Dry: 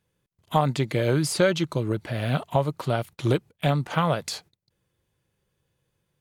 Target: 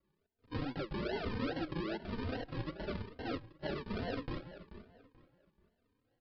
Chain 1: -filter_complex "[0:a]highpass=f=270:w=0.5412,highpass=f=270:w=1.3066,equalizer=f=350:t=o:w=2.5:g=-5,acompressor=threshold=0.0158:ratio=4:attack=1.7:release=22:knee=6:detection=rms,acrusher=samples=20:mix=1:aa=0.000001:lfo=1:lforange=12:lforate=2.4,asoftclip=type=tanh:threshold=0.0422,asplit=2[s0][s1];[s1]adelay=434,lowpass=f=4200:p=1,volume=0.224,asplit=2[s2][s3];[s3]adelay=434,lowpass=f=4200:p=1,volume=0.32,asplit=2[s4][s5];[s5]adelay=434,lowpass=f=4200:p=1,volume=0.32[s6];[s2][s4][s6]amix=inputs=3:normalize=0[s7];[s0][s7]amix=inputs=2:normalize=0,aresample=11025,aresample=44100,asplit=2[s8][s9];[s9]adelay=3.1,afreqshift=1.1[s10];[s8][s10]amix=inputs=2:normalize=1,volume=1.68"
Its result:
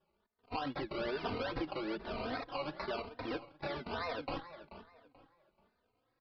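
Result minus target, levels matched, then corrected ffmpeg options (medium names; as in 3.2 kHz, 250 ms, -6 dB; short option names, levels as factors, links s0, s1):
decimation with a swept rate: distortion -17 dB
-filter_complex "[0:a]highpass=f=270:w=0.5412,highpass=f=270:w=1.3066,equalizer=f=350:t=o:w=2.5:g=-5,acompressor=threshold=0.0158:ratio=4:attack=1.7:release=22:knee=6:detection=rms,acrusher=samples=51:mix=1:aa=0.000001:lfo=1:lforange=30.6:lforate=2.4,asoftclip=type=tanh:threshold=0.0422,asplit=2[s0][s1];[s1]adelay=434,lowpass=f=4200:p=1,volume=0.224,asplit=2[s2][s3];[s3]adelay=434,lowpass=f=4200:p=1,volume=0.32,asplit=2[s4][s5];[s5]adelay=434,lowpass=f=4200:p=1,volume=0.32[s6];[s2][s4][s6]amix=inputs=3:normalize=0[s7];[s0][s7]amix=inputs=2:normalize=0,aresample=11025,aresample=44100,asplit=2[s8][s9];[s9]adelay=3.1,afreqshift=1.1[s10];[s8][s10]amix=inputs=2:normalize=1,volume=1.68"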